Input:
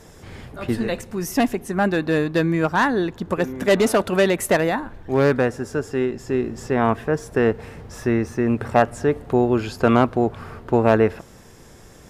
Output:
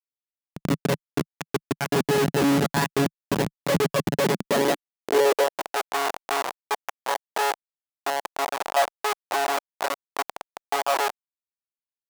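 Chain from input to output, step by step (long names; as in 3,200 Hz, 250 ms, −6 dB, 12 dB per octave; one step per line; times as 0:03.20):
one-pitch LPC vocoder at 8 kHz 140 Hz
comparator with hysteresis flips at −26 dBFS
high-pass filter sweep 160 Hz → 780 Hz, 0:04.18–0:05.73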